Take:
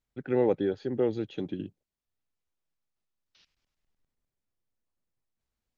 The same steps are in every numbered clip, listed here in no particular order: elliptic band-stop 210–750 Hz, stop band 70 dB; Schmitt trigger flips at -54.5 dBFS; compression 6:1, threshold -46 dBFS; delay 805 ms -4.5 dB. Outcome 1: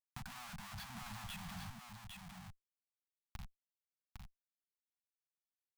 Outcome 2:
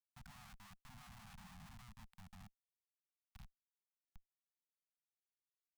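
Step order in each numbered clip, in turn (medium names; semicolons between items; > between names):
Schmitt trigger > elliptic band-stop > compression > delay; compression > delay > Schmitt trigger > elliptic band-stop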